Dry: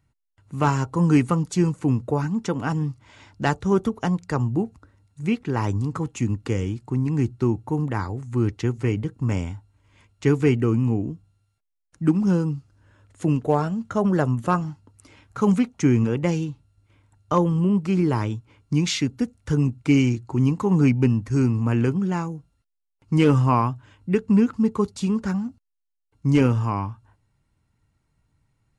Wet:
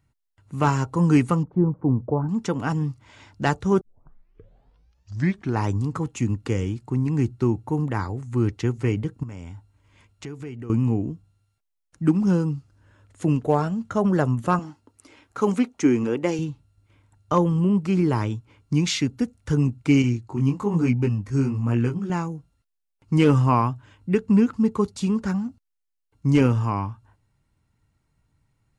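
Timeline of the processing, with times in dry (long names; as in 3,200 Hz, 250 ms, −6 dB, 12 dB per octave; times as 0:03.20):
0:01.43–0:02.29: low-pass filter 1,000 Hz 24 dB per octave
0:03.81: tape start 1.86 s
0:09.23–0:10.70: downward compressor 4 to 1, threshold −35 dBFS
0:14.59–0:16.39: low shelf with overshoot 210 Hz −9 dB, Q 1.5
0:20.02–0:22.10: chorus effect 1.1 Hz, delay 16.5 ms, depth 5.4 ms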